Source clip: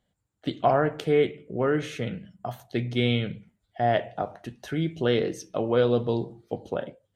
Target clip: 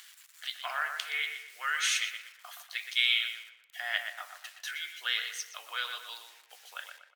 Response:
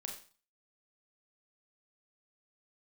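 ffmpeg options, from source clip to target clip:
-filter_complex "[0:a]asettb=1/sr,asplit=3[link_01][link_02][link_03];[link_01]atrim=end=2.794[link_04];[link_02]atrim=start=2.79:end=3.81,asetpts=PTS-STARTPTS,afade=type=in:duration=0.004:curve=qsin,afade=type=out:start_time=1.016:duration=0.004:curve=qsin,highshelf=frequency=4700:gain=8[link_05];[link_03]atrim=start=3.806[link_06];[link_04][link_05]acrossfade=duration=0.004:curve1=hsin:curve2=qsin[link_07];[link_07][link_06]acrossfade=duration=0.004:curve1=qsin:curve2=hsin,acompressor=mode=upward:threshold=-34dB:ratio=2.5,asettb=1/sr,asplit=3[link_08][link_09][link_10];[link_08]atrim=end=1.374[link_11];[link_09]atrim=start=1.37:end=2.06,asetpts=PTS-STARTPTS,afade=type=in:duration=0.004:curve=qsin,afade=type=out:start_time=0.686:duration=0.004:curve=qsin,equalizer=frequency=7300:width=0.39:gain=12.5[link_12];[link_10]atrim=start=2.056[link_13];[link_11][link_12]acrossfade=duration=0.004:curve1=hsin:curve2=qsin[link_14];[link_14][link_13]acrossfade=duration=0.004:curve1=qsin:curve2=hsin,acrusher=bits=8:mix=0:aa=0.000001,highpass=frequency=1500:width=0.5412,highpass=frequency=1500:width=1.3066,asplit=2[link_15][link_16];[link_16]adelay=121,lowpass=frequency=2400:poles=1,volume=-6dB,asplit=2[link_17][link_18];[link_18]adelay=121,lowpass=frequency=2400:poles=1,volume=0.45,asplit=2[link_19][link_20];[link_20]adelay=121,lowpass=frequency=2400:poles=1,volume=0.45,asplit=2[link_21][link_22];[link_22]adelay=121,lowpass=frequency=2400:poles=1,volume=0.45,asplit=2[link_23][link_24];[link_24]adelay=121,lowpass=frequency=2400:poles=1,volume=0.45[link_25];[link_15][link_17][link_19][link_21][link_23][link_25]amix=inputs=6:normalize=0,volume=4dB" -ar 48000 -c:a libvorbis -b:a 96k

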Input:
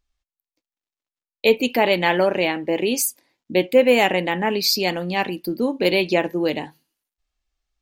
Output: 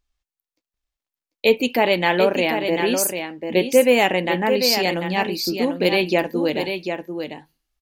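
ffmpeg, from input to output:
ffmpeg -i in.wav -af "aecho=1:1:743:0.447" out.wav

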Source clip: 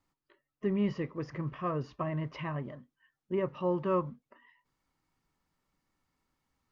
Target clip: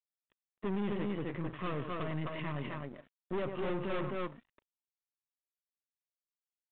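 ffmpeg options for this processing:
ffmpeg -i in.wav -filter_complex "[0:a]acrossover=split=170[link_01][link_02];[link_01]alimiter=level_in=19dB:limit=-24dB:level=0:latency=1,volume=-19dB[link_03];[link_02]aecho=1:1:102|259.5:0.282|0.708[link_04];[link_03][link_04]amix=inputs=2:normalize=0,acontrast=89,aeval=exprs='(tanh(28.2*val(0)+0.6)-tanh(0.6))/28.2':channel_layout=same,afftfilt=real='re*gte(hypot(re,im),0.00178)':imag='im*gte(hypot(re,im),0.00178)':win_size=1024:overlap=0.75,aeval=exprs='sgn(val(0))*max(abs(val(0))-0.00282,0)':channel_layout=same,adynamicequalizer=threshold=0.00562:dfrequency=830:dqfactor=0.72:tfrequency=830:tqfactor=0.72:attack=5:release=100:ratio=0.375:range=2:mode=cutabove:tftype=bell,volume=-2dB" -ar 8000 -c:a pcm_mulaw out.wav

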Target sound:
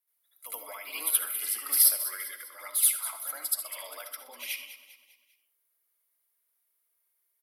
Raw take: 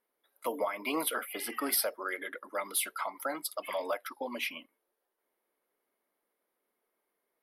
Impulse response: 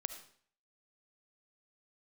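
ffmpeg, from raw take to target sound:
-filter_complex "[0:a]aderivative,aecho=1:1:199|398|597|796:0.224|0.101|0.0453|0.0204,asplit=2[link_01][link_02];[1:a]atrim=start_sample=2205,atrim=end_sample=3969,adelay=75[link_03];[link_02][link_03]afir=irnorm=-1:irlink=0,volume=8dB[link_04];[link_01][link_04]amix=inputs=2:normalize=0"

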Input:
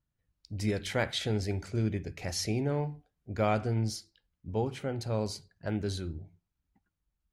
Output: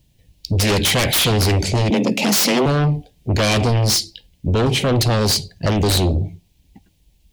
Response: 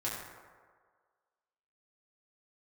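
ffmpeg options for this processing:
-filter_complex "[0:a]acrossover=split=920[link_01][link_02];[link_01]alimiter=level_in=5.5dB:limit=-24dB:level=0:latency=1,volume=-5.5dB[link_03];[link_02]highpass=frequency=2900:width_type=q:width=1.6[link_04];[link_03][link_04]amix=inputs=2:normalize=0,aeval=exprs='0.15*sin(PI/2*7.94*val(0)/0.15)':channel_layout=same,asettb=1/sr,asplit=3[link_05][link_06][link_07];[link_05]atrim=end=1.904[link_08];[link_06]atrim=start=1.9:end=2.66,asetpts=PTS-STARTPTS,afade=type=in:duration=0.004:curve=qsin,afade=type=out:start_time=0.756:duration=0.004:curve=qsin,afreqshift=120[link_09];[link_07]atrim=start=2.656[link_10];[link_08][link_09]acrossfade=duration=0.004:curve1=hsin:curve2=qsin[link_11];[link_11][link_10]acrossfade=duration=0.004:curve1=qsin:curve2=hsin,volume=3.5dB"

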